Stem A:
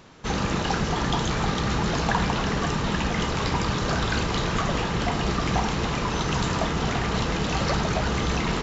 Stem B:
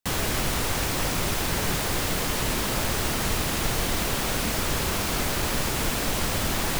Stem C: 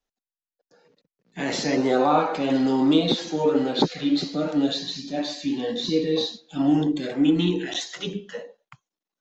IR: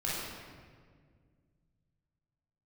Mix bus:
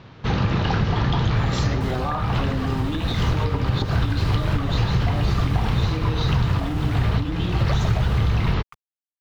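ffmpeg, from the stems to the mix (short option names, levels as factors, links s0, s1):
-filter_complex "[0:a]lowpass=f=4500:w=0.5412,lowpass=f=4500:w=1.3066,equalizer=f=110:w=1.8:g=13,volume=1.33[s0];[1:a]highshelf=f=5600:g=-9,tremolo=f=0.8:d=0.61,adelay=1750,volume=0.299[s1];[2:a]equalizer=f=1200:w=7.2:g=10.5,bandreject=f=490:w=12,volume=0.708,asplit=2[s2][s3];[s3]apad=whole_len=380420[s4];[s0][s4]sidechaincompress=threshold=0.0355:ratio=8:attack=30:release=191[s5];[s1][s2]amix=inputs=2:normalize=0,aeval=exprs='val(0)*gte(abs(val(0)),0.00447)':c=same,acompressor=threshold=0.0631:ratio=6,volume=1[s6];[s5][s6]amix=inputs=2:normalize=0,asubboost=boost=2.5:cutoff=120,acompressor=threshold=0.158:ratio=6"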